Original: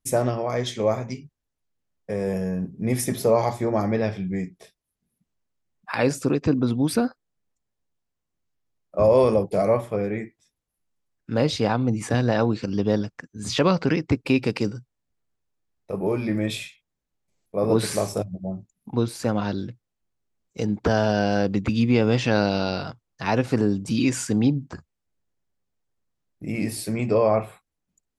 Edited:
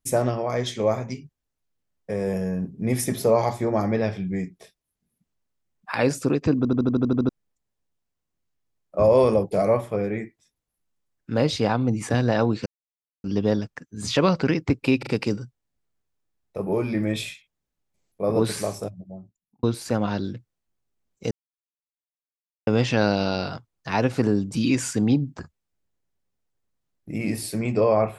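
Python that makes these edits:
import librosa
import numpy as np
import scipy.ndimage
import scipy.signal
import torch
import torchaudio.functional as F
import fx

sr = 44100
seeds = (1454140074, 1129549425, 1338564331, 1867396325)

y = fx.edit(x, sr, fx.stutter_over(start_s=6.57, slice_s=0.08, count=9),
    fx.insert_silence(at_s=12.66, length_s=0.58),
    fx.stutter(start_s=14.41, slice_s=0.04, count=3),
    fx.fade_out_span(start_s=17.56, length_s=1.41),
    fx.silence(start_s=20.65, length_s=1.36), tone=tone)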